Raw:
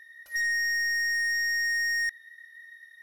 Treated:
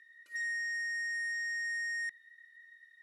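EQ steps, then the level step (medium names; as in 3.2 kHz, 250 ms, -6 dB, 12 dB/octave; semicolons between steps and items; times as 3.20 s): cabinet simulation 240–7600 Hz, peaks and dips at 530 Hz -6 dB, 850 Hz -9 dB, 1.7 kHz -9 dB, 3.6 kHz -8 dB, 5.9 kHz -8 dB; peaking EQ 5.3 kHz -8 dB 0.42 oct; static phaser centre 310 Hz, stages 4; 0.0 dB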